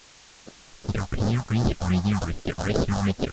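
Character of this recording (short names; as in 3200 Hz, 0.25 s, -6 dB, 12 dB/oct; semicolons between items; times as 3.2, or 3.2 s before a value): aliases and images of a low sample rate 1000 Hz, jitter 20%; phasing stages 4, 2.6 Hz, lowest notch 350–2600 Hz; a quantiser's noise floor 8-bit, dither triangular; Vorbis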